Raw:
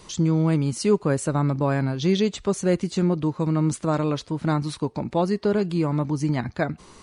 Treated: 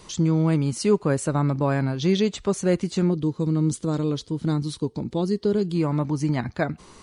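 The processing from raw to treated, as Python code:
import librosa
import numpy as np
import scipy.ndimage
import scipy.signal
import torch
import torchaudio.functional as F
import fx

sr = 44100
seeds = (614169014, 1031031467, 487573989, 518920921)

y = fx.spec_box(x, sr, start_s=3.11, length_s=2.63, low_hz=500.0, high_hz=2900.0, gain_db=-9)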